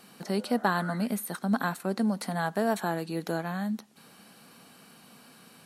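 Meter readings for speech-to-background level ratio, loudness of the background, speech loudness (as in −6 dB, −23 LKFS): 14.5 dB, −45.0 LKFS, −30.5 LKFS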